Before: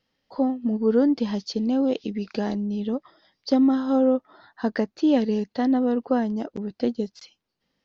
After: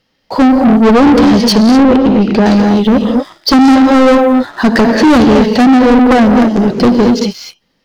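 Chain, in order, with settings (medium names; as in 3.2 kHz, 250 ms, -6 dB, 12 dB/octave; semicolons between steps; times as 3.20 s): gated-style reverb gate 270 ms rising, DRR 4.5 dB; sine folder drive 10 dB, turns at -6.5 dBFS; waveshaping leveller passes 2; 1.83–2.46 s: low-pass 1.9 kHz 6 dB/octave; trim +3 dB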